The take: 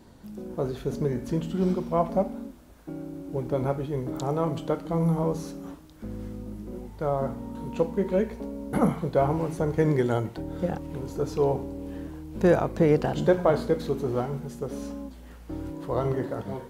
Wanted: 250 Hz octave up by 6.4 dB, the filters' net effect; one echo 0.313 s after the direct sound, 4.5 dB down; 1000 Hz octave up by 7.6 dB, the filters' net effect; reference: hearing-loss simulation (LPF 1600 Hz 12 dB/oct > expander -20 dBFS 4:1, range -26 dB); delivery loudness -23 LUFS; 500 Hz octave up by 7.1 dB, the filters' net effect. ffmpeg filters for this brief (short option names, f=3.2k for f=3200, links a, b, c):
-af "lowpass=1.6k,equalizer=f=250:t=o:g=7,equalizer=f=500:t=o:g=4.5,equalizer=f=1k:t=o:g=8.5,aecho=1:1:313:0.596,agate=range=-26dB:threshold=-20dB:ratio=4,volume=-3dB"